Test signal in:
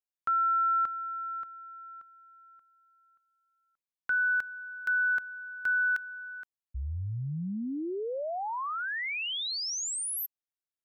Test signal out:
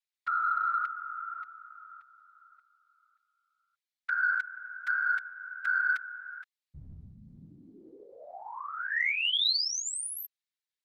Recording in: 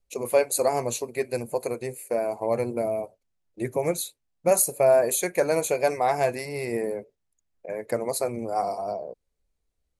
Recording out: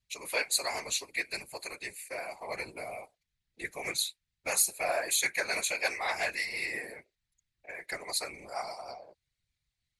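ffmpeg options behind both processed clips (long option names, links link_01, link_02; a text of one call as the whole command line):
ffmpeg -i in.wav -af "equalizer=frequency=125:width_type=o:width=1:gain=-9,equalizer=frequency=250:width_type=o:width=1:gain=-10,equalizer=frequency=500:width_type=o:width=1:gain=-9,equalizer=frequency=2000:width_type=o:width=1:gain=11,equalizer=frequency=4000:width_type=o:width=1:gain=12,equalizer=frequency=8000:width_type=o:width=1:gain=4,afftfilt=real='hypot(re,im)*cos(2*PI*random(0))':imag='hypot(re,im)*sin(2*PI*random(1))':win_size=512:overlap=0.75,acontrast=87,volume=-9dB" out.wav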